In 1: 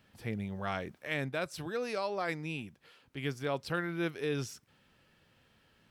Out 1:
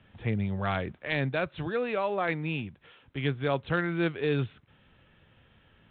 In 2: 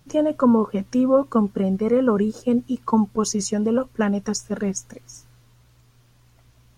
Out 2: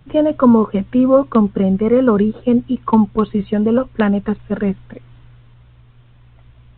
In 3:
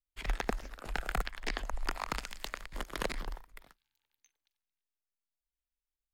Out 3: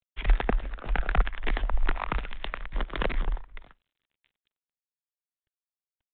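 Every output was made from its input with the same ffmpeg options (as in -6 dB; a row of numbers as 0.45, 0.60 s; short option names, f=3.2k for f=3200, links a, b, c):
-filter_complex "[0:a]acrossover=split=120[a][b];[a]acontrast=68[c];[c][b]amix=inputs=2:normalize=0,volume=5.5dB" -ar 8000 -c:a adpcm_g726 -b:a 40k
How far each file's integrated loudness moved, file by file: +6.0, +6.0, +7.0 LU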